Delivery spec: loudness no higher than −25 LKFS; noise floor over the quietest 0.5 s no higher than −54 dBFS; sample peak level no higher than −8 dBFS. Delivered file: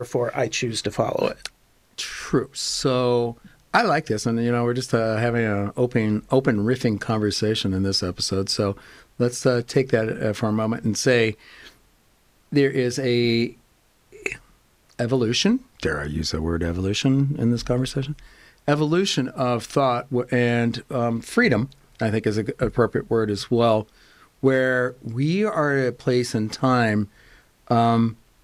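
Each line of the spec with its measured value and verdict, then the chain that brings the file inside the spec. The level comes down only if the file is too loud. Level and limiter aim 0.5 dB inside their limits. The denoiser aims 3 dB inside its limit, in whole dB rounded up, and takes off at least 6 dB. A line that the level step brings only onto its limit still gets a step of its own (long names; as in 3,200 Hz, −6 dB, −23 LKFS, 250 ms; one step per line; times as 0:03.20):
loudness −22.5 LKFS: out of spec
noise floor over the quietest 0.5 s −60 dBFS: in spec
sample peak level −5.0 dBFS: out of spec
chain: level −3 dB
brickwall limiter −8.5 dBFS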